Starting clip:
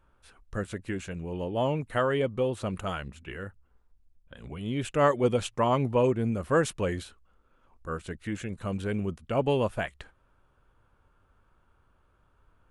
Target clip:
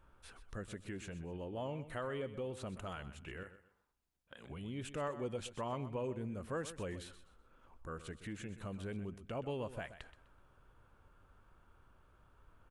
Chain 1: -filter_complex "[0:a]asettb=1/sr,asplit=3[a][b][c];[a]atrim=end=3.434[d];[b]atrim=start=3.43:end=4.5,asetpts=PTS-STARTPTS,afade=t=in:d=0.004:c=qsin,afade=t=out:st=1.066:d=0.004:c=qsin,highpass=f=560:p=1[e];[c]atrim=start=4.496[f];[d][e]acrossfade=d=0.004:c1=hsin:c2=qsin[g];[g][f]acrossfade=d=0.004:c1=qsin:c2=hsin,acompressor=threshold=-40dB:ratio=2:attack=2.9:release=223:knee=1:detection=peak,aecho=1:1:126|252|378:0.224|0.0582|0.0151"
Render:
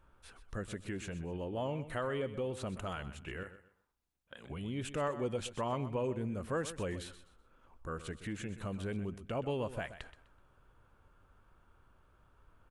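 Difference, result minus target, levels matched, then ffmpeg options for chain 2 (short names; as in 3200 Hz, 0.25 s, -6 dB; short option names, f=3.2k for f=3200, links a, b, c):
compressor: peak gain reduction -4.5 dB
-filter_complex "[0:a]asettb=1/sr,asplit=3[a][b][c];[a]atrim=end=3.434[d];[b]atrim=start=3.43:end=4.5,asetpts=PTS-STARTPTS,afade=t=in:d=0.004:c=qsin,afade=t=out:st=1.066:d=0.004:c=qsin,highpass=f=560:p=1[e];[c]atrim=start=4.496[f];[d][e]acrossfade=d=0.004:c1=hsin:c2=qsin[g];[g][f]acrossfade=d=0.004:c1=qsin:c2=hsin,acompressor=threshold=-49dB:ratio=2:attack=2.9:release=223:knee=1:detection=peak,aecho=1:1:126|252|378:0.224|0.0582|0.0151"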